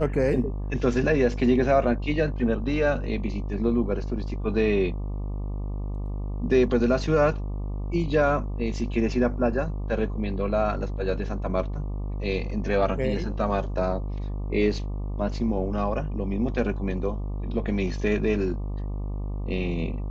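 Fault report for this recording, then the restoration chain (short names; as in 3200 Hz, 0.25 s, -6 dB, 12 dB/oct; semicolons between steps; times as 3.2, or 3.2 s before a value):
buzz 50 Hz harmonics 24 -30 dBFS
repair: de-hum 50 Hz, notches 24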